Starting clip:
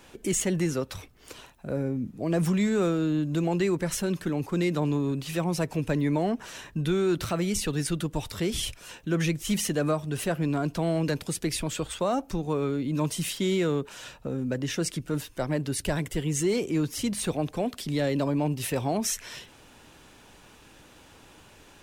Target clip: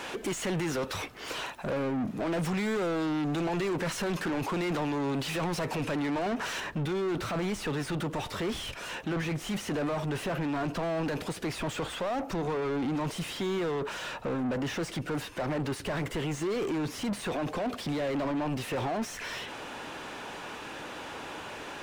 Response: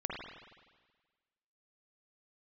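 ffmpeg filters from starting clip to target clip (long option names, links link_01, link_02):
-filter_complex "[0:a]alimiter=level_in=0.5dB:limit=-24dB:level=0:latency=1:release=14,volume=-0.5dB,asetnsamples=nb_out_samples=441:pad=0,asendcmd='6.6 lowpass f 1400',asplit=2[link_01][link_02];[link_02]highpass=frequency=720:poles=1,volume=27dB,asoftclip=type=tanh:threshold=-24.5dB[link_03];[link_01][link_03]amix=inputs=2:normalize=0,lowpass=frequency=2500:poles=1,volume=-6dB"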